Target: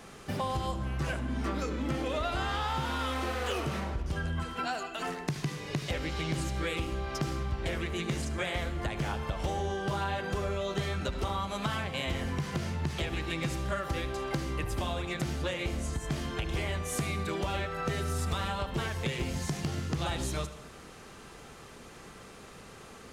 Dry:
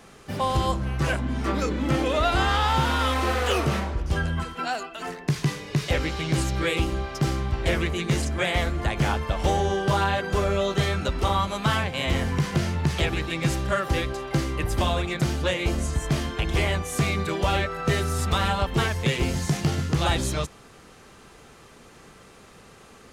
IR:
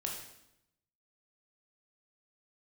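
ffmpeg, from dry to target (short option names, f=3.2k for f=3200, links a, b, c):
-filter_complex "[0:a]acompressor=threshold=-31dB:ratio=4,asplit=2[a][b];[1:a]atrim=start_sample=2205,adelay=73[c];[b][c]afir=irnorm=-1:irlink=0,volume=-13dB[d];[a][d]amix=inputs=2:normalize=0"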